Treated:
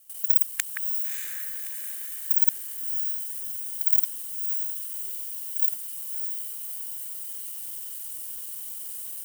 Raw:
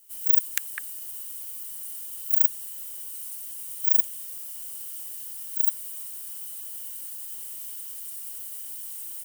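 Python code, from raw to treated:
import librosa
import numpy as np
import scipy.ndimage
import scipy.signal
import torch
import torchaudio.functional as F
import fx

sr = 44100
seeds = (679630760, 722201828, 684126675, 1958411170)

y = fx.local_reverse(x, sr, ms=47.0)
y = fx.echo_diffused(y, sr, ms=615, feedback_pct=47, wet_db=-5.5)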